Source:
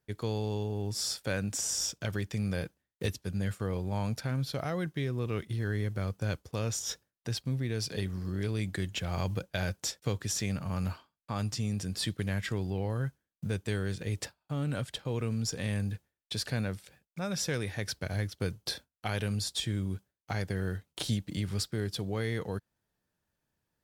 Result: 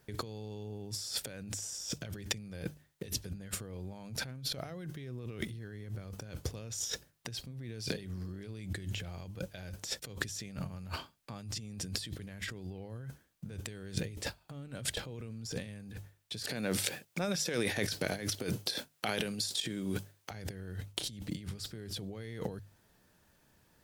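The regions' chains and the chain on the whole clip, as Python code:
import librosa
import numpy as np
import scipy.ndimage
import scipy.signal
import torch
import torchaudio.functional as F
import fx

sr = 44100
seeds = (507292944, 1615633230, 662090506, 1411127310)

y = fx.chain(x, sr, fx.over_compress(threshold_db=-38.0, ratio=-0.5),
    fx.highpass(hz=230.0, slope=12), at=(16.44, 20.31))
y = fx.over_compress(y, sr, threshold_db=-45.0, ratio=-1.0)
y = fx.hum_notches(y, sr, base_hz=50, count=3)
y = fx.dynamic_eq(y, sr, hz=1100.0, q=1.0, threshold_db=-60.0, ratio=4.0, max_db=-5)
y = F.gain(torch.from_numpy(y), 5.5).numpy()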